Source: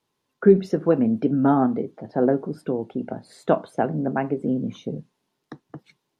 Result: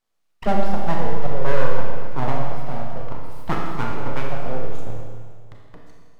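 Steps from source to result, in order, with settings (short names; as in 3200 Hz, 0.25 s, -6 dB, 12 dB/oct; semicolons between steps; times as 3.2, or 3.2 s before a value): full-wave rectifier; 4.8–5.64 ring modulator 110 Hz; Schroeder reverb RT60 1.8 s, combs from 27 ms, DRR -1 dB; gain -3.5 dB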